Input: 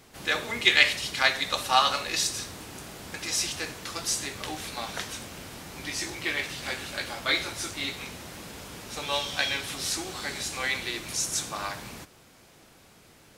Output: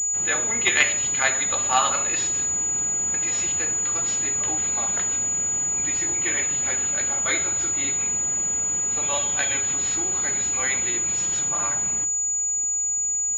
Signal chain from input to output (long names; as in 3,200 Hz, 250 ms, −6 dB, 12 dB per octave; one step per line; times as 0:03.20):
hum removal 53.71 Hz, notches 31
switching amplifier with a slow clock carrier 6,900 Hz
level +1.5 dB